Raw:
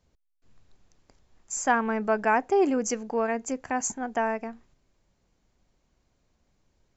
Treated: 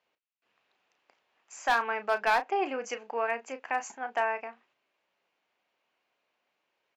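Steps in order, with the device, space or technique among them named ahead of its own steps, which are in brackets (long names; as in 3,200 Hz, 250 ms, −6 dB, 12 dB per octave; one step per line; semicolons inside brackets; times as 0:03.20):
0:01.63–0:02.30: dynamic equaliser 5,100 Hz, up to +6 dB, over −46 dBFS, Q 1.1
megaphone (band-pass filter 650–3,100 Hz; parametric band 2,700 Hz +7.5 dB 0.54 octaves; hard clipping −18.5 dBFS, distortion −15 dB; double-tracking delay 34 ms −11 dB)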